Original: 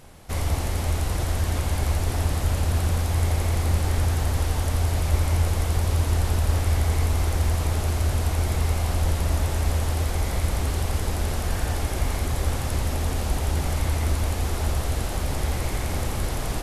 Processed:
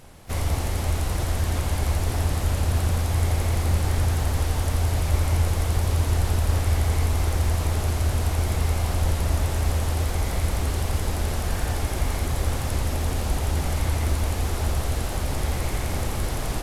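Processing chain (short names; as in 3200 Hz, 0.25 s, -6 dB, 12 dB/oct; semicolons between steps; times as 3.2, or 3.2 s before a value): harmoniser +5 st -17 dB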